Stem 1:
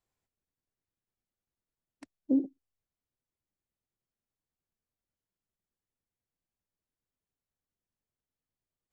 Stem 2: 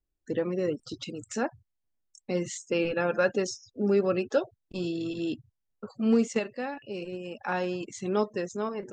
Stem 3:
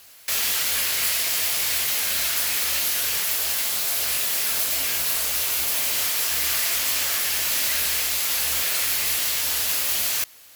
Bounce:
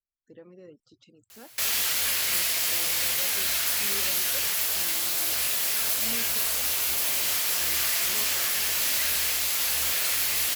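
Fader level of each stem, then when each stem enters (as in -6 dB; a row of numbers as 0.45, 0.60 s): off, -19.5 dB, -2.5 dB; off, 0.00 s, 1.30 s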